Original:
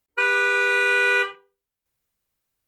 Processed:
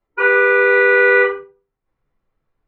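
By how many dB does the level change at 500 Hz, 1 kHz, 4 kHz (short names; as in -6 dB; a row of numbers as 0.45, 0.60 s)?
+12.5, +6.0, -6.5 dB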